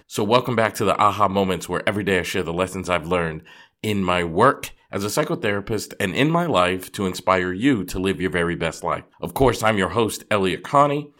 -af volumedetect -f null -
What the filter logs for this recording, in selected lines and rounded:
mean_volume: -21.3 dB
max_volume: -2.0 dB